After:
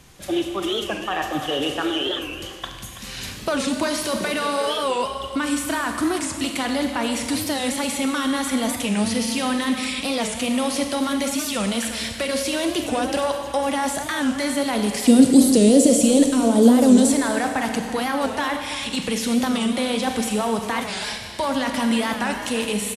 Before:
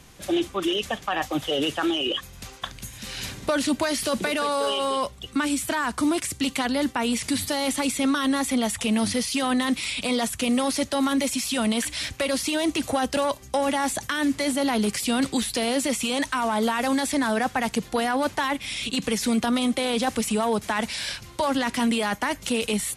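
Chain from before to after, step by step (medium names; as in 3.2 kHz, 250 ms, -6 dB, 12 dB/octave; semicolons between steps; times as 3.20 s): 15.07–17.12 s: graphic EQ 125/250/500/1000/2000/8000 Hz +5/+10/+10/-9/-9/+9 dB; speakerphone echo 330 ms, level -12 dB; Schroeder reverb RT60 1.7 s, combs from 31 ms, DRR 4.5 dB; warped record 45 rpm, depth 160 cents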